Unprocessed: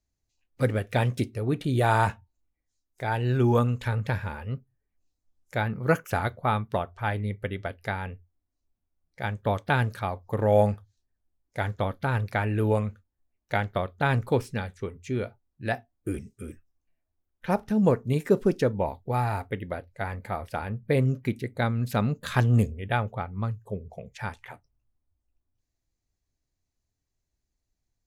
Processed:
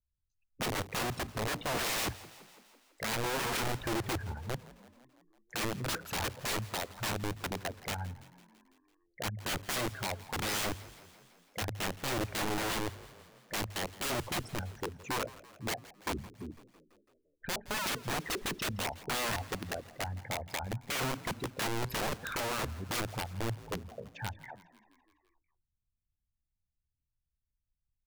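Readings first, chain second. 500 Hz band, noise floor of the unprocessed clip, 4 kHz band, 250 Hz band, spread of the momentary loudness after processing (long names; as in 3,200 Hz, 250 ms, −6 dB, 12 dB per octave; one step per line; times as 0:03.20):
−11.5 dB, −82 dBFS, +6.0 dB, −11.0 dB, 9 LU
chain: spectral envelope exaggerated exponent 3
wrap-around overflow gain 24.5 dB
mains-hum notches 50/100 Hz
on a send: echo with shifted repeats 167 ms, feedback 63%, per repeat +42 Hz, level −19 dB
on the sum: level −4 dB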